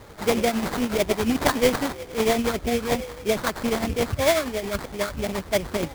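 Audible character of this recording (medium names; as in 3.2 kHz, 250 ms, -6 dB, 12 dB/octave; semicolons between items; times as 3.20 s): tremolo triangle 11 Hz, depth 60%; a quantiser's noise floor 8-bit, dither triangular; phasing stages 8, 3.1 Hz, lowest notch 760–1700 Hz; aliases and images of a low sample rate 2.8 kHz, jitter 20%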